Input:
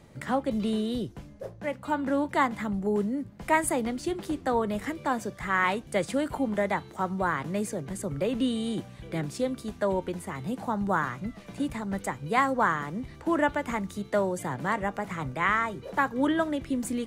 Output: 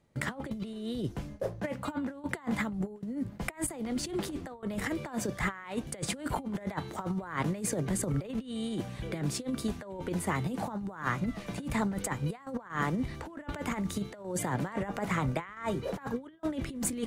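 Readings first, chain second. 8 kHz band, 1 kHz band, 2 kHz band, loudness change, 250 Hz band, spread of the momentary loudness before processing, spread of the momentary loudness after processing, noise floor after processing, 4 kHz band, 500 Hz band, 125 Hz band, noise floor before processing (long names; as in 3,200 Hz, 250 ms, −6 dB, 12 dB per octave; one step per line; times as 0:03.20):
+2.0 dB, −9.5 dB, −7.5 dB, −5.5 dB, −4.0 dB, 9 LU, 6 LU, −49 dBFS, −2.5 dB, −8.0 dB, +1.5 dB, −48 dBFS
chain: compressor whose output falls as the input rises −33 dBFS, ratio −0.5
noise gate with hold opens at −33 dBFS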